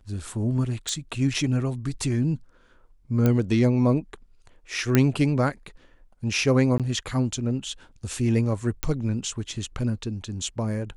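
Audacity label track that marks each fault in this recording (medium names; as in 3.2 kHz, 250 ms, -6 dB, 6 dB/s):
0.890000	0.890000	pop -16 dBFS
3.260000	3.260000	pop -10 dBFS
4.950000	4.950000	pop -5 dBFS
6.780000	6.800000	dropout 17 ms
8.830000	8.830000	pop -9 dBFS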